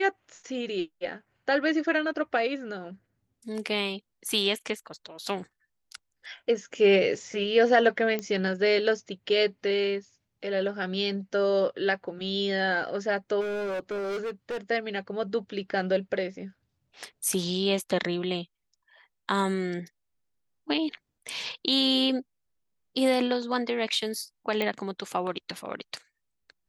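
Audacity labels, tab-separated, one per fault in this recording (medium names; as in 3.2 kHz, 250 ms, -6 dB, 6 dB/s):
8.190000	8.190000	pop -17 dBFS
13.400000	14.580000	clipped -29 dBFS
24.620000	24.620000	pop -15 dBFS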